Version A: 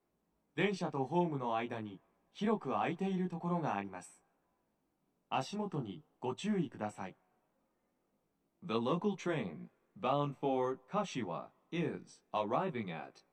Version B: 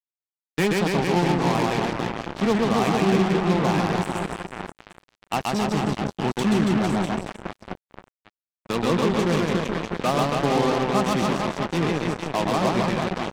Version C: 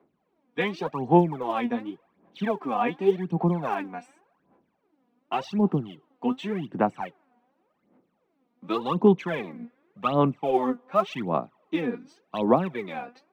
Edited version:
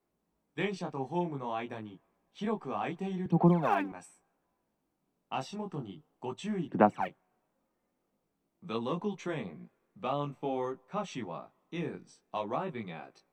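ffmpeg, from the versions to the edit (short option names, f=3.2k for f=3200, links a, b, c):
-filter_complex "[2:a]asplit=2[a][b];[0:a]asplit=3[c][d][e];[c]atrim=end=3.262[f];[a]atrim=start=3.258:end=3.922[g];[d]atrim=start=3.918:end=6.682[h];[b]atrim=start=6.678:end=7.082[i];[e]atrim=start=7.078[j];[f][g]acrossfade=d=0.004:c1=hsin:c2=hsin[k];[k][h]acrossfade=d=0.004:c1=hsin:c2=hsin[l];[l][i]acrossfade=d=0.004:c1=hsin:c2=hsin[m];[m][j]acrossfade=d=0.004:c1=hsin:c2=hsin"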